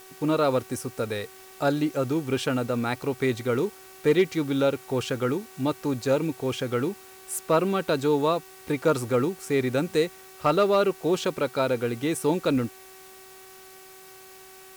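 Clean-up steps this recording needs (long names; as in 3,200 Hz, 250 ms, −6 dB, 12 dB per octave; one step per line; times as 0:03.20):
clipped peaks rebuilt −12.5 dBFS
hum removal 378.9 Hz, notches 7
broadband denoise 23 dB, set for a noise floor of −48 dBFS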